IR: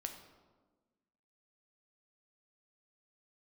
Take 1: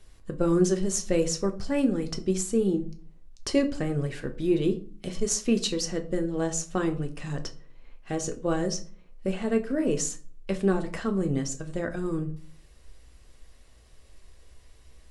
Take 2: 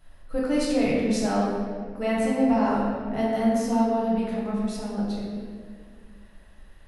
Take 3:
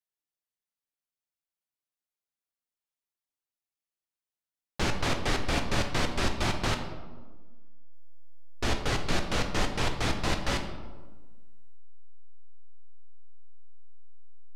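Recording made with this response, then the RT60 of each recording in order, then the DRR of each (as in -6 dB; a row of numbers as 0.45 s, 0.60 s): 3; 0.45 s, 2.0 s, 1.3 s; 5.0 dB, -6.5 dB, 4.0 dB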